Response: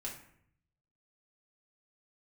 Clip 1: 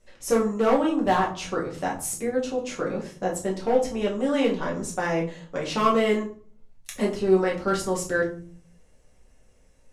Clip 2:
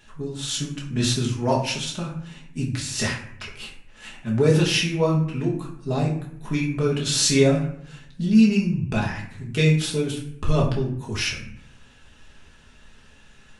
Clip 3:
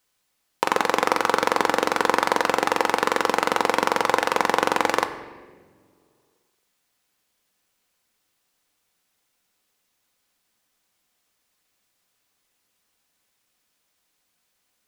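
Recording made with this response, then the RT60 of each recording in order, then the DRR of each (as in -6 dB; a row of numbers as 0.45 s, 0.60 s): 2; 0.45 s, 0.65 s, no single decay rate; -3.5 dB, -3.5 dB, 7.0 dB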